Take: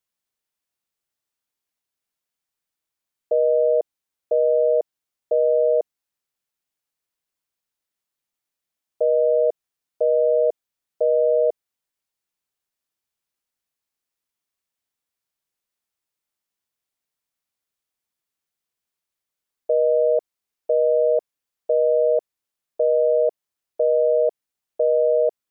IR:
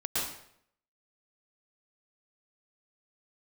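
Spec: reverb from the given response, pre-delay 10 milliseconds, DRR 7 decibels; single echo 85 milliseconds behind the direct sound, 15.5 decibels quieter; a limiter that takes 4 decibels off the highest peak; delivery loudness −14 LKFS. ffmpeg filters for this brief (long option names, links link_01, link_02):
-filter_complex "[0:a]alimiter=limit=-15.5dB:level=0:latency=1,aecho=1:1:85:0.168,asplit=2[link_01][link_02];[1:a]atrim=start_sample=2205,adelay=10[link_03];[link_02][link_03]afir=irnorm=-1:irlink=0,volume=-14dB[link_04];[link_01][link_04]amix=inputs=2:normalize=0,volume=10dB"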